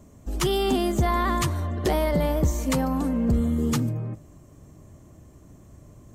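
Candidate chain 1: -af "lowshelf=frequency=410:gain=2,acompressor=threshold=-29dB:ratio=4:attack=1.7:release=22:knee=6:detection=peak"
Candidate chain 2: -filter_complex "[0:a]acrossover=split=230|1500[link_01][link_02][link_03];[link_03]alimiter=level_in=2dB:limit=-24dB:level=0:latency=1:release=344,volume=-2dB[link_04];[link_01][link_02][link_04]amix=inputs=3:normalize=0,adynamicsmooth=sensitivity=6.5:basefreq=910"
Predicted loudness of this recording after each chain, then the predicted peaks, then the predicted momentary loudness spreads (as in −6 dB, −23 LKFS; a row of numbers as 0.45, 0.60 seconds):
−31.5, −25.0 LKFS; −20.0, −11.5 dBFS; 18, 6 LU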